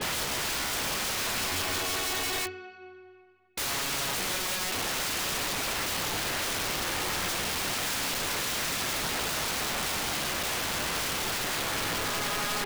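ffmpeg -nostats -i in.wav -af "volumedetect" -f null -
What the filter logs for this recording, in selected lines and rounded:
mean_volume: -31.2 dB
max_volume: -26.1 dB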